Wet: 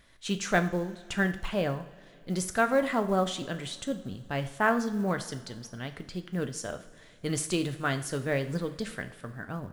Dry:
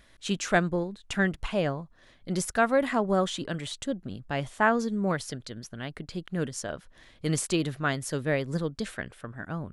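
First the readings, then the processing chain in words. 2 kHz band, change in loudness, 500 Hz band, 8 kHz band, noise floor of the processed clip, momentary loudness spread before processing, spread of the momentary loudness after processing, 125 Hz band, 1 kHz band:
-1.0 dB, -1.5 dB, -1.5 dB, -1.0 dB, -54 dBFS, 14 LU, 13 LU, -1.5 dB, -1.5 dB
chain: two-slope reverb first 0.52 s, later 2.9 s, from -18 dB, DRR 7.5 dB; short-mantissa float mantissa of 4-bit; gain -2 dB

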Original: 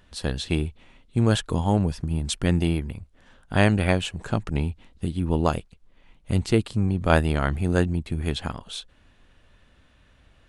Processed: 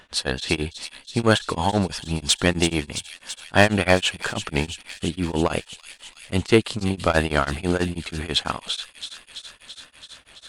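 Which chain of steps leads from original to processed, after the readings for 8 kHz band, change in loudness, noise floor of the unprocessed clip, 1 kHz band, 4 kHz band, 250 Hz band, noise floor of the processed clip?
+8.5 dB, +2.0 dB, -59 dBFS, +4.0 dB, +9.0 dB, +0.5 dB, -53 dBFS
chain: overdrive pedal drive 18 dB, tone 6400 Hz, clips at -2 dBFS; on a send: thin delay 0.334 s, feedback 76%, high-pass 3900 Hz, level -6 dB; on the sum: beating tremolo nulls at 6.1 Hz; gain +1 dB

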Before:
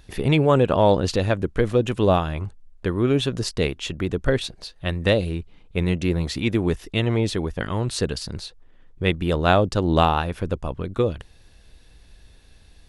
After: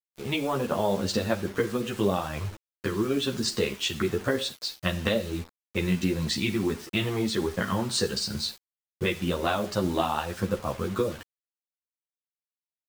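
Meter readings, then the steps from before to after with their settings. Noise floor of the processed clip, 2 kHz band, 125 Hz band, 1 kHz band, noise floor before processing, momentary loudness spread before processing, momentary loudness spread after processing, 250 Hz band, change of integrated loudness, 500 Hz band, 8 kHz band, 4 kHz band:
under -85 dBFS, -3.5 dB, -9.0 dB, -7.0 dB, -51 dBFS, 12 LU, 5 LU, -4.5 dB, -5.5 dB, -6.5 dB, +1.5 dB, -1.0 dB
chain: opening faded in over 0.70 s; elliptic low-pass 8800 Hz, stop band 40 dB; spectral noise reduction 8 dB; HPF 110 Hz 24 dB/oct; compressor 5:1, threshold -29 dBFS, peak gain reduction 15 dB; Schroeder reverb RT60 0.51 s, combs from 28 ms, DRR 13 dB; bit-crush 8-bit; ensemble effect; gain +9 dB

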